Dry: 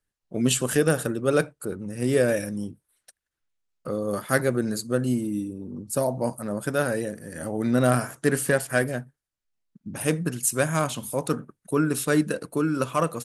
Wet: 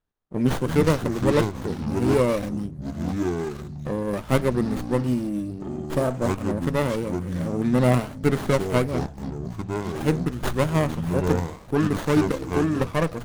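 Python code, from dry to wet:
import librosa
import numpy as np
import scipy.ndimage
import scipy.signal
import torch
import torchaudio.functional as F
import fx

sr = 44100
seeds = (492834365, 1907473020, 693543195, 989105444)

y = fx.echo_pitch(x, sr, ms=154, semitones=-6, count=2, db_per_echo=-6.0)
y = fx.running_max(y, sr, window=17)
y = y * librosa.db_to_amplitude(1.0)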